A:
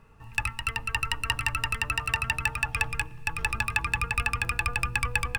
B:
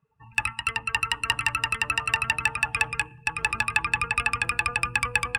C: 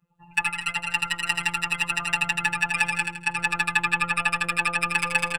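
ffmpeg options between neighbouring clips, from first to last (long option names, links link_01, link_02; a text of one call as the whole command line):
ffmpeg -i in.wav -af "highpass=frequency=210:poles=1,afftdn=noise_reduction=24:noise_floor=-47,volume=3.5dB" out.wav
ffmpeg -i in.wav -filter_complex "[0:a]afftfilt=real='hypot(re,im)*cos(PI*b)':imag='0':win_size=1024:overlap=0.75,asplit=2[link_01][link_02];[link_02]aecho=0:1:81|162|243|324|405:0.562|0.242|0.104|0.0447|0.0192[link_03];[link_01][link_03]amix=inputs=2:normalize=0,volume=3.5dB" out.wav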